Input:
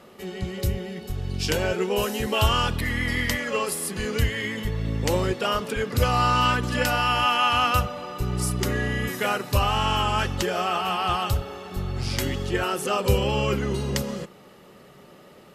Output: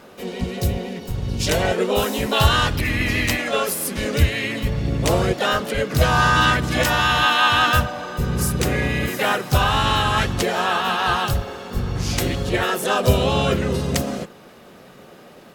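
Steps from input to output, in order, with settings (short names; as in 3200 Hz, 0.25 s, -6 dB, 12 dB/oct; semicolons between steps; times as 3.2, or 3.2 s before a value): harmoniser +4 st -3 dB, +5 st -10 dB; gain +2.5 dB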